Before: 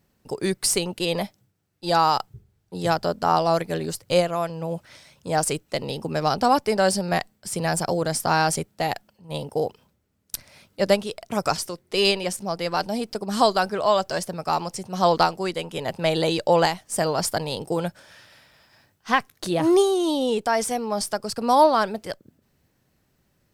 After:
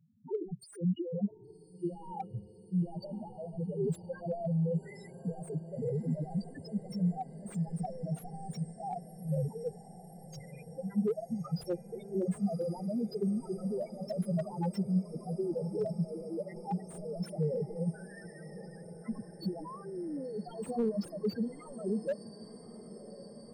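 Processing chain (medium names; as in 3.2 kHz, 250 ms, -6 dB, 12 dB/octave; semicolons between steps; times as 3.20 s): high-pass 84 Hz 24 dB/octave; integer overflow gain 16.5 dB; compressor with a negative ratio -29 dBFS, ratio -0.5; loudest bins only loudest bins 2; on a send: echo that smears into a reverb 1110 ms, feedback 75%, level -16 dB; on the sum: slew-rate limiter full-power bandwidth 18 Hz; trim +1.5 dB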